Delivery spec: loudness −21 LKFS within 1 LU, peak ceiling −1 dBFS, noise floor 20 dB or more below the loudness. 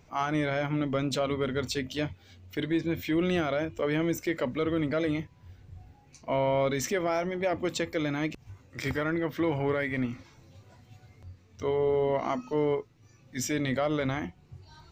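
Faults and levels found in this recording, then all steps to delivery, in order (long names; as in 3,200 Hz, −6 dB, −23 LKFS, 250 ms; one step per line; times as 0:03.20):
integrated loudness −29.5 LKFS; sample peak −18.0 dBFS; target loudness −21.0 LKFS
→ level +8.5 dB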